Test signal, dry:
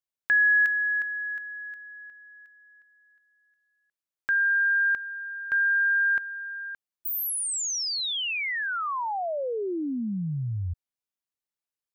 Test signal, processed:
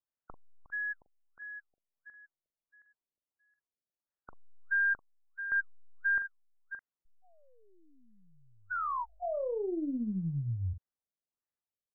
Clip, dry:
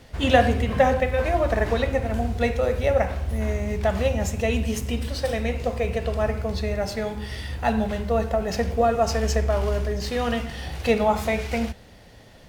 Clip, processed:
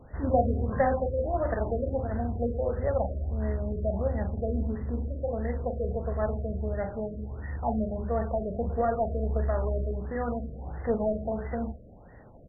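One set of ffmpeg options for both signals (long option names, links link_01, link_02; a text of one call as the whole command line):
ffmpeg -i in.wav -filter_complex "[0:a]asplit=2[link_01][link_02];[link_02]acompressor=threshold=-36dB:ratio=6:attack=0.35:release=40:detection=rms,volume=-0.5dB[link_03];[link_01][link_03]amix=inputs=2:normalize=0,asplit=2[link_04][link_05];[link_05]adelay=42,volume=-9dB[link_06];[link_04][link_06]amix=inputs=2:normalize=0,aeval=exprs='0.75*(cos(1*acos(clip(val(0)/0.75,-1,1)))-cos(1*PI/2))+0.0188*(cos(8*acos(clip(val(0)/0.75,-1,1)))-cos(8*PI/2))':channel_layout=same,afftfilt=real='re*lt(b*sr/1024,660*pow(2100/660,0.5+0.5*sin(2*PI*1.5*pts/sr)))':imag='im*lt(b*sr/1024,660*pow(2100/660,0.5+0.5*sin(2*PI*1.5*pts/sr)))':win_size=1024:overlap=0.75,volume=-7.5dB" out.wav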